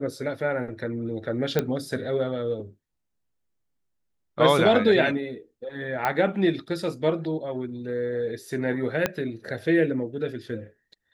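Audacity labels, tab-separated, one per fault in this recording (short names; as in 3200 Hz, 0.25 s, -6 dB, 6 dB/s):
1.590000	1.590000	pop -9 dBFS
6.050000	6.050000	pop -12 dBFS
9.060000	9.060000	pop -8 dBFS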